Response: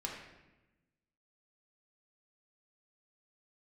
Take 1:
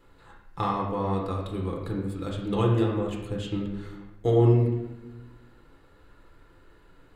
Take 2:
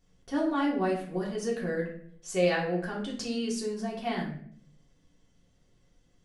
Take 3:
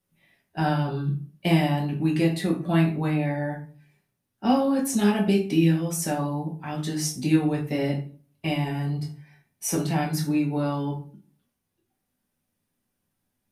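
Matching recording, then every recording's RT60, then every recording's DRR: 1; 1.0 s, 0.60 s, 0.40 s; -2.5 dB, -4.5 dB, -1.5 dB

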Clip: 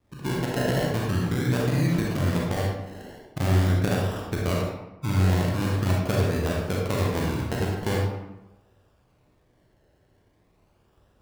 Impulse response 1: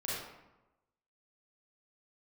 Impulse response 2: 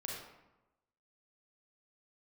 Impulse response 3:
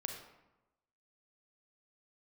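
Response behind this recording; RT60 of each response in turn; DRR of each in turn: 2; 1.0 s, 1.0 s, 1.0 s; -8.0 dB, -3.0 dB, 3.0 dB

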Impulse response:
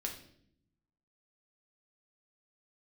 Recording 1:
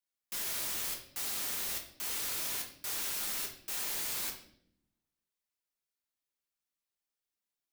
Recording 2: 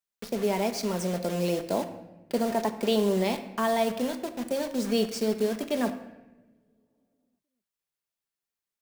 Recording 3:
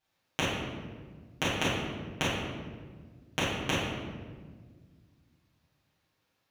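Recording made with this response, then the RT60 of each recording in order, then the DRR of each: 1; 0.65 s, no single decay rate, 1.6 s; 0.5 dB, 6.5 dB, -12.5 dB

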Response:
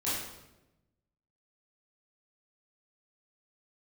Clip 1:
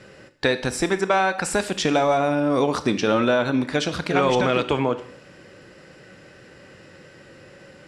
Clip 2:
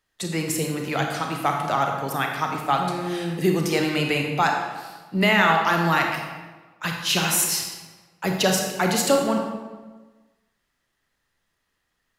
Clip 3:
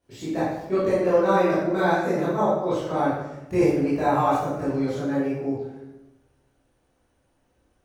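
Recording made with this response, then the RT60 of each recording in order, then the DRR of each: 3; 0.65 s, 1.3 s, 0.95 s; 11.5 dB, 2.0 dB, -11.0 dB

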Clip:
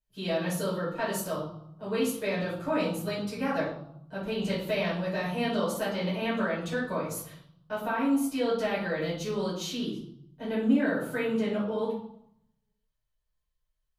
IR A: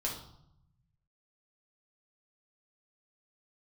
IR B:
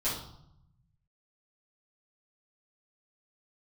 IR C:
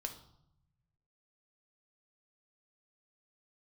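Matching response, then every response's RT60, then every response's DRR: B; 0.75 s, 0.75 s, 0.75 s; -3.0 dB, -11.5 dB, 4.5 dB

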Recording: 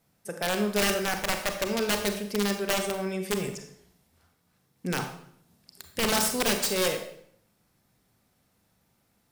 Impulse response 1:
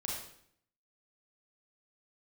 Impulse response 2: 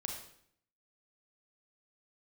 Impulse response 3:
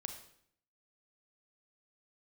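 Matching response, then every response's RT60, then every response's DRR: 3; 0.65 s, 0.65 s, 0.65 s; -3.5 dB, 1.0 dB, 5.5 dB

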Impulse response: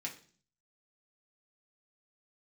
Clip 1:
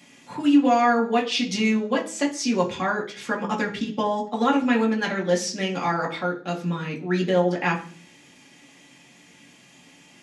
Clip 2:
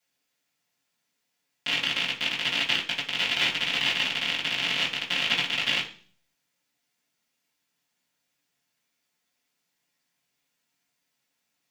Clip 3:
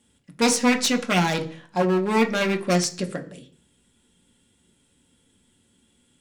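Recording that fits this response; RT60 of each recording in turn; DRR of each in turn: 1; 0.45 s, 0.45 s, 0.45 s; -2.0 dB, -10.5 dB, 4.5 dB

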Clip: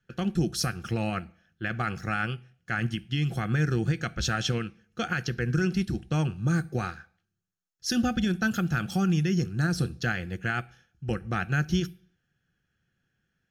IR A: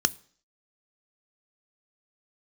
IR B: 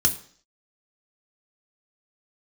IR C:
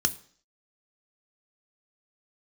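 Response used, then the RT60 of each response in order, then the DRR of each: A; 0.55 s, 0.55 s, 0.55 s; 17.0 dB, 5.0 dB, 10.5 dB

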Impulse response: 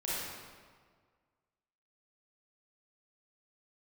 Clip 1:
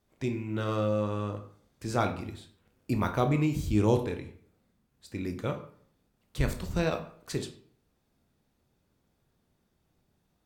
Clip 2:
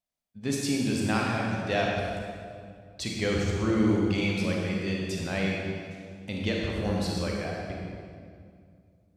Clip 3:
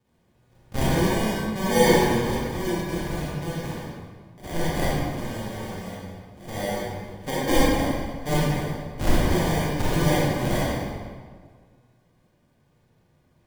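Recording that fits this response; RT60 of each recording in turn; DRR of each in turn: 3; 0.55 s, 2.2 s, 1.7 s; 6.0 dB, -2.0 dB, -9.0 dB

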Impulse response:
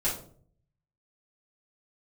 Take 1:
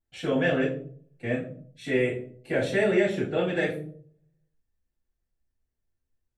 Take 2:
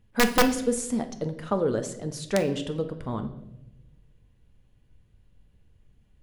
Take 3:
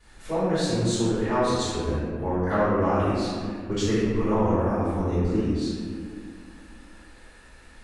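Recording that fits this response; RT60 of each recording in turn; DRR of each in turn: 1; 0.55 s, 0.95 s, 2.0 s; -8.5 dB, 7.0 dB, -18.0 dB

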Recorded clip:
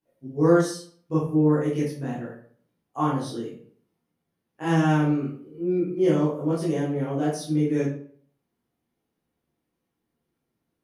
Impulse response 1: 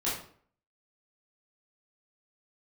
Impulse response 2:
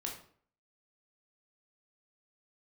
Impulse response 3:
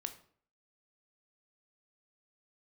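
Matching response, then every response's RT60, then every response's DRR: 1; 0.55 s, 0.55 s, 0.55 s; -9.0 dB, -0.5 dB, 7.5 dB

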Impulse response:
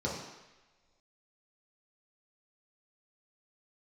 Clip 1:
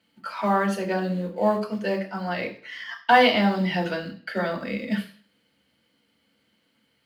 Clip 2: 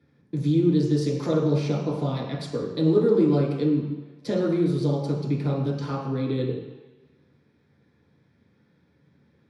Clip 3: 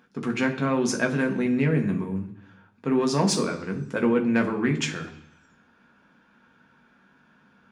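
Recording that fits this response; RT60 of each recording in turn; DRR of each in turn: 2; 0.45 s, no single decay rate, 0.70 s; -1.0 dB, -5.5 dB, 2.5 dB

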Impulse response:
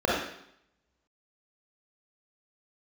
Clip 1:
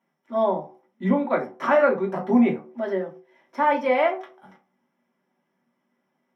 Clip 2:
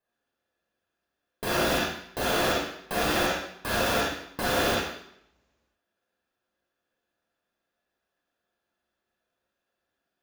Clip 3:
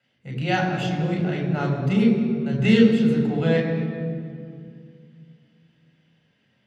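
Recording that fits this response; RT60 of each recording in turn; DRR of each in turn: 2; no single decay rate, 0.70 s, 2.3 s; -1.5 dB, -5.5 dB, -0.5 dB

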